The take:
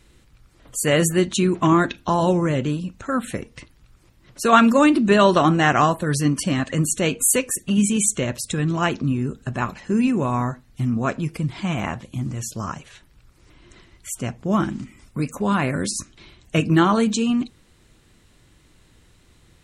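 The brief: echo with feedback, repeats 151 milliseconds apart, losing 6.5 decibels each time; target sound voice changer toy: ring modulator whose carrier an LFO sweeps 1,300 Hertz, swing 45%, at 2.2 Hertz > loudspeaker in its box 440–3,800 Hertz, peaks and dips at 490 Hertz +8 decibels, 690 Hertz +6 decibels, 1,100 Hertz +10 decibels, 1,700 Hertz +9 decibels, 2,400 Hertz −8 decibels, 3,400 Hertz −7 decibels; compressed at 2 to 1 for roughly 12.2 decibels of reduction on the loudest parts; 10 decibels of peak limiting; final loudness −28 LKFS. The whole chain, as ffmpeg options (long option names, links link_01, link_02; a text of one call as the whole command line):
ffmpeg -i in.wav -af "acompressor=threshold=-32dB:ratio=2,alimiter=limit=-23.5dB:level=0:latency=1,aecho=1:1:151|302|453|604|755|906:0.473|0.222|0.105|0.0491|0.0231|0.0109,aeval=exprs='val(0)*sin(2*PI*1300*n/s+1300*0.45/2.2*sin(2*PI*2.2*n/s))':channel_layout=same,highpass=440,equalizer=frequency=490:width_type=q:width=4:gain=8,equalizer=frequency=690:width_type=q:width=4:gain=6,equalizer=frequency=1100:width_type=q:width=4:gain=10,equalizer=frequency=1700:width_type=q:width=4:gain=9,equalizer=frequency=2400:width_type=q:width=4:gain=-8,equalizer=frequency=3400:width_type=q:width=4:gain=-7,lowpass=frequency=3800:width=0.5412,lowpass=frequency=3800:width=1.3066" out.wav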